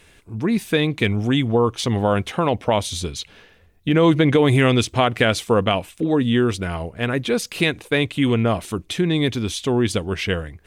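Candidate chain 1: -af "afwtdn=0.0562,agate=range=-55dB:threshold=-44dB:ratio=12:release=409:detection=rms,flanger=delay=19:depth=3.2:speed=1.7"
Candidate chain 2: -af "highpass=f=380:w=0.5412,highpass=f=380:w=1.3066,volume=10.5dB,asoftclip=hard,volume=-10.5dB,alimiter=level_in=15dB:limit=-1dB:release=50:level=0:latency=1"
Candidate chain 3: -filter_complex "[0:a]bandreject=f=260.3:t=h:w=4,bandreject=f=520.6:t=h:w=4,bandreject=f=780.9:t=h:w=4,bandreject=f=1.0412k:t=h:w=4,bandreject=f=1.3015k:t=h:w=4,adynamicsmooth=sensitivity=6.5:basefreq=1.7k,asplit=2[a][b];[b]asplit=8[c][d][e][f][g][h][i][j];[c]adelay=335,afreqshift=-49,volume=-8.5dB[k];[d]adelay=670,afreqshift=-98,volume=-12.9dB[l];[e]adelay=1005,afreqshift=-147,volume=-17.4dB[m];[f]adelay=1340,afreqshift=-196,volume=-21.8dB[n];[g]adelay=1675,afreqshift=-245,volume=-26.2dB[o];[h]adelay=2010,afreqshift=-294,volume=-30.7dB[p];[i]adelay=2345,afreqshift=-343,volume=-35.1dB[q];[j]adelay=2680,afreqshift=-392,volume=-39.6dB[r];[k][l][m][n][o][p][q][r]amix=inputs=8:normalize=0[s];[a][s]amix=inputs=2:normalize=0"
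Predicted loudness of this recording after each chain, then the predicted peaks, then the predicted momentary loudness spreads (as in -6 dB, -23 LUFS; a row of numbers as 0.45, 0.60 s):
-23.5, -12.0, -19.5 LUFS; -6.5, -1.0, -2.5 dBFS; 10, 6, 9 LU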